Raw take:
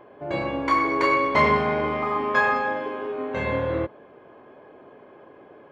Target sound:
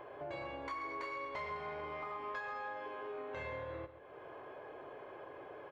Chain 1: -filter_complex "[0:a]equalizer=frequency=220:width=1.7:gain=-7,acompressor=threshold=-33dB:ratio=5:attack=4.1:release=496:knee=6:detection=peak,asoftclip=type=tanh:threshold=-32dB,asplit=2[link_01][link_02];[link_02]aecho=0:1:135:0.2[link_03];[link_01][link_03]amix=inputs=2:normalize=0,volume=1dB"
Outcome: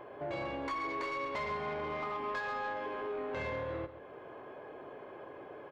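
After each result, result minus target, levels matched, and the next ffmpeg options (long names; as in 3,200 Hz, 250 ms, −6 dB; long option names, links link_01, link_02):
downward compressor: peak gain reduction −6 dB; 250 Hz band +2.5 dB
-filter_complex "[0:a]equalizer=frequency=220:width=1.7:gain=-7,acompressor=threshold=-41.5dB:ratio=5:attack=4.1:release=496:knee=6:detection=peak,asoftclip=type=tanh:threshold=-32dB,asplit=2[link_01][link_02];[link_02]aecho=0:1:135:0.2[link_03];[link_01][link_03]amix=inputs=2:normalize=0,volume=1dB"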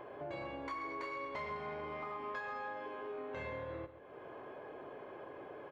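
250 Hz band +3.5 dB
-filter_complex "[0:a]equalizer=frequency=220:width=1.7:gain=-16,acompressor=threshold=-41.5dB:ratio=5:attack=4.1:release=496:knee=6:detection=peak,asoftclip=type=tanh:threshold=-32dB,asplit=2[link_01][link_02];[link_02]aecho=0:1:135:0.2[link_03];[link_01][link_03]amix=inputs=2:normalize=0,volume=1dB"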